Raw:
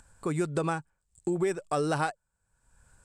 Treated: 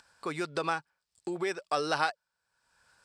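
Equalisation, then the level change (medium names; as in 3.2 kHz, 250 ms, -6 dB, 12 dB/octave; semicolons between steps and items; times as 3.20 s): high-pass 1 kHz 6 dB/octave; resonant high shelf 6.1 kHz -6.5 dB, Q 3; +4.0 dB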